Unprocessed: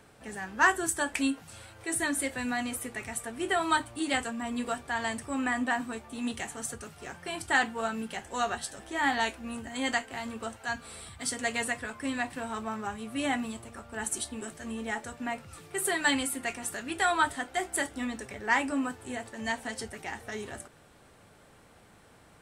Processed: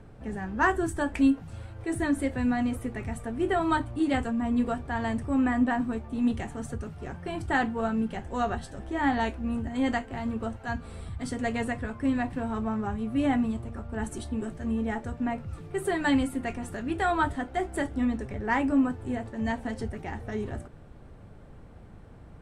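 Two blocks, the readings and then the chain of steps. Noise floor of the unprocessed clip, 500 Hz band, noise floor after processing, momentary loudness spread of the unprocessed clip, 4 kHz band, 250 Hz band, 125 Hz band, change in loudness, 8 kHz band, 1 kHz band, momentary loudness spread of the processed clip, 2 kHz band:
-58 dBFS, +4.0 dB, -48 dBFS, 12 LU, -7.0 dB, +8.0 dB, +13.0 dB, +2.0 dB, -12.0 dB, +0.5 dB, 11 LU, -3.5 dB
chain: tilt EQ -4 dB/octave

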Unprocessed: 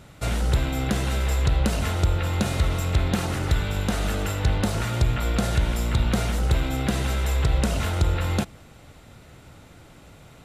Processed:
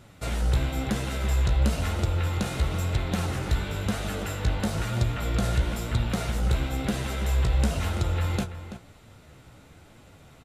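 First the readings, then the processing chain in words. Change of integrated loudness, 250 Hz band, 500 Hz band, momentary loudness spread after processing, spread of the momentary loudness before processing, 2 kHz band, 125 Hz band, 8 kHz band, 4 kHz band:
-3.0 dB, -3.0 dB, -3.5 dB, 5 LU, 3 LU, -3.5 dB, -2.5 dB, -4.0 dB, -3.5 dB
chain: flange 1 Hz, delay 8 ms, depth 9.3 ms, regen +38%; echo from a far wall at 57 m, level -11 dB

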